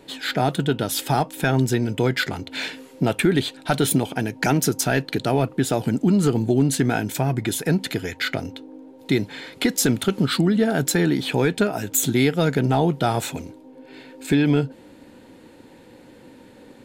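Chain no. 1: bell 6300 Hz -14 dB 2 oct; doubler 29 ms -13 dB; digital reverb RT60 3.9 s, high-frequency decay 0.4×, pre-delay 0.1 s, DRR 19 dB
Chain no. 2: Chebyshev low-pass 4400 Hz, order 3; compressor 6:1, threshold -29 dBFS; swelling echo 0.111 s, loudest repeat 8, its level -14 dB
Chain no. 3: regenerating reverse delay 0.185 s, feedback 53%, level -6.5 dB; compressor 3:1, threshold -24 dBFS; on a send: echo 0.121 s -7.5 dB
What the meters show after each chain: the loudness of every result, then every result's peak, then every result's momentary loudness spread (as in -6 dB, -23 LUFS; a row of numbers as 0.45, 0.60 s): -22.5, -32.0, -26.5 LUFS; -7.0, -14.5, -9.5 dBFS; 14, 7, 12 LU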